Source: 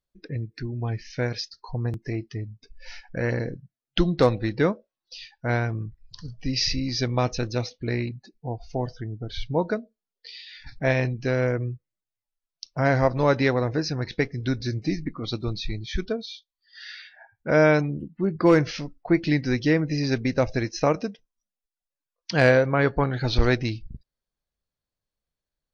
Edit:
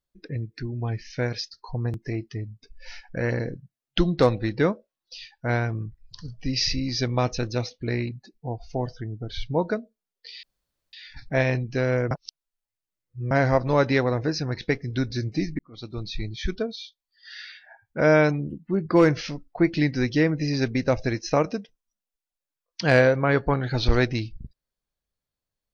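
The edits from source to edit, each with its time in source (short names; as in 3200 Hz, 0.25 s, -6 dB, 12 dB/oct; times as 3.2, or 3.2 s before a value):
10.43 insert room tone 0.50 s
11.61–12.81 reverse
15.09–15.74 fade in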